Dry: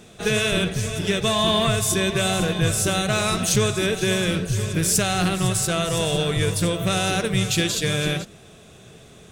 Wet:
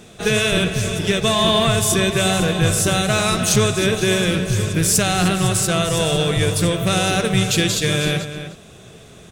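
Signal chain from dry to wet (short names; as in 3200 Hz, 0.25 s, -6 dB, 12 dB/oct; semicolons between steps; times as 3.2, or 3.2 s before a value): outdoor echo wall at 52 m, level -10 dB; gain +3.5 dB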